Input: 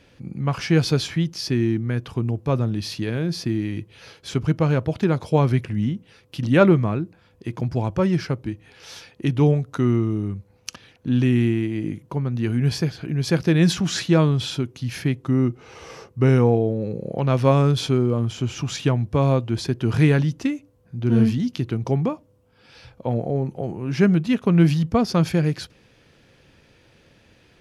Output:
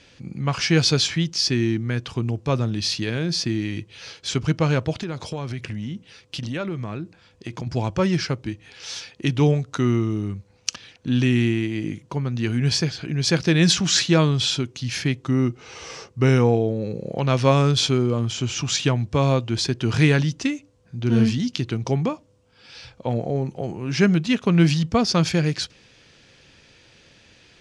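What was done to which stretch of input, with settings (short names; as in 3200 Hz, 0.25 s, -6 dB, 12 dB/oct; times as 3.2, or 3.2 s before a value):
4.99–7.67 compressor, threshold -25 dBFS
whole clip: LPF 7900 Hz 24 dB/oct; high shelf 2200 Hz +11.5 dB; gain -1 dB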